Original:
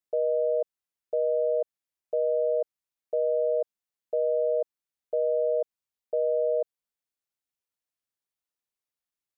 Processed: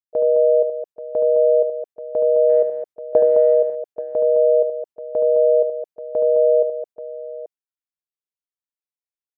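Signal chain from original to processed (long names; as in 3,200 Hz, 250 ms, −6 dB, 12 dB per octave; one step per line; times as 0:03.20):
noise gate with hold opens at −19 dBFS
0:02.49–0:03.54: transient designer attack +8 dB, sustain +2 dB
multi-tap delay 58/73/213/832 ms −19/−7/−8.5/−13.5 dB
level +7 dB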